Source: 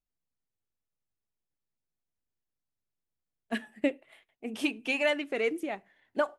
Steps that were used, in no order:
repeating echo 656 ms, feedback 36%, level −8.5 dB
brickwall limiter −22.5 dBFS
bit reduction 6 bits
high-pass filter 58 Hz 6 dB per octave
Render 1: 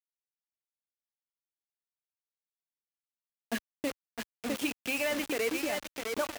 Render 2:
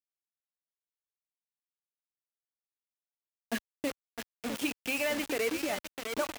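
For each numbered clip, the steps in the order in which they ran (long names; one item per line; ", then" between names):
repeating echo, then brickwall limiter, then bit reduction, then high-pass filter
brickwall limiter, then repeating echo, then bit reduction, then high-pass filter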